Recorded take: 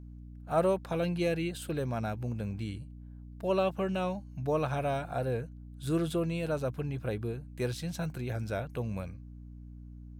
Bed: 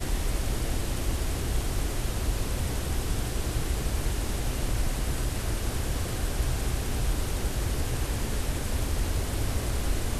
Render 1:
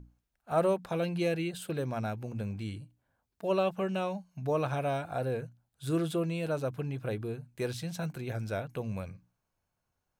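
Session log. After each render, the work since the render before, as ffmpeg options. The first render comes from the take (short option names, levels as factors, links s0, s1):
-af "bandreject=f=60:t=h:w=6,bandreject=f=120:t=h:w=6,bandreject=f=180:t=h:w=6,bandreject=f=240:t=h:w=6,bandreject=f=300:t=h:w=6"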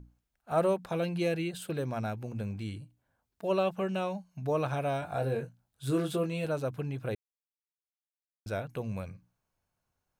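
-filter_complex "[0:a]asettb=1/sr,asplit=3[s0][s1][s2];[s0]atrim=end=5.004[s3];[s1]atrim=start=5:end=6.45,asetpts=PTS-STARTPTS,afade=t=in:d=0.004:c=qsin,afade=t=out:st=1.446:d=0.004:c=qsin,asplit=2[s4][s5];[s5]adelay=22,volume=0.562[s6];[s4][s6]amix=inputs=2:normalize=0,atrim=end_sample=63945[s7];[s2]atrim=start=6.446[s8];[s3][s7]acrossfade=d=0.004:c1=hsin:c2=qsin[s9];[s9][s8]acrossfade=d=0.004:c1=qsin:c2=hsin,asplit=3[s10][s11][s12];[s10]atrim=end=7.15,asetpts=PTS-STARTPTS,afade=t=out:st=7.146:d=0.004:c=hsin[s13];[s11]atrim=start=7.15:end=8.46,asetpts=PTS-STARTPTS,volume=0[s14];[s12]atrim=start=8.46,asetpts=PTS-STARTPTS,afade=t=in:d=0.004:c=hsin[s15];[s13][s14][s15]concat=n=3:v=0:a=1"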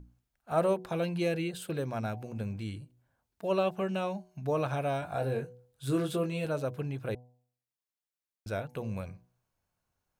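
-af "bandreject=f=123.6:t=h:w=4,bandreject=f=247.2:t=h:w=4,bandreject=f=370.8:t=h:w=4,bandreject=f=494.4:t=h:w=4,bandreject=f=618:t=h:w=4,bandreject=f=741.6:t=h:w=4,bandreject=f=865.2:t=h:w=4,bandreject=f=988.8:t=h:w=4"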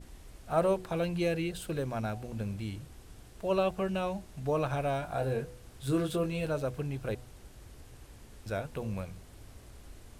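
-filter_complex "[1:a]volume=0.075[s0];[0:a][s0]amix=inputs=2:normalize=0"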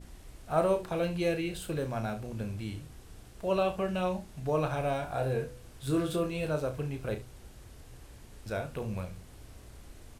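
-af "aecho=1:1:33|71:0.398|0.178"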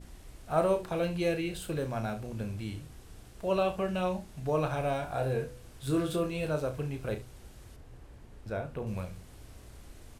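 -filter_complex "[0:a]asettb=1/sr,asplit=3[s0][s1][s2];[s0]atrim=end=7.764[s3];[s1]atrim=start=7.76:end=8.87,asetpts=PTS-STARTPTS,afade=t=in:d=0.004:c=qsin,afade=t=out:st=1.106:d=0.004:c=qsin,highshelf=f=2700:g=-11.5[s4];[s2]atrim=start=8.866[s5];[s3][s4]acrossfade=d=0.004:c1=hsin:c2=qsin[s6];[s6][s5]acrossfade=d=0.004:c1=qsin:c2=hsin"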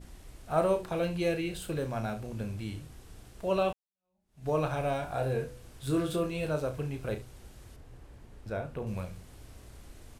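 -filter_complex "[0:a]asplit=2[s0][s1];[s0]atrim=end=3.73,asetpts=PTS-STARTPTS,afade=t=out:st=3.726:d=0.004:c=hsin[s2];[s1]atrim=start=3.73,asetpts=PTS-STARTPTS,afade=t=in:d=0.75:c=exp[s3];[s2][s3]concat=n=2:v=0:a=1"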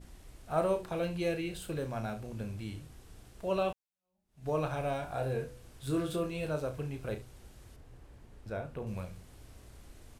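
-af "volume=0.708"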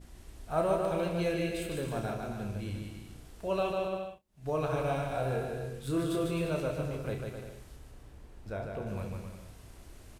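-filter_complex "[0:a]asplit=2[s0][s1];[s1]adelay=30,volume=0.251[s2];[s0][s2]amix=inputs=2:normalize=0,aecho=1:1:150|262.5|346.9|410.2|457.6:0.631|0.398|0.251|0.158|0.1"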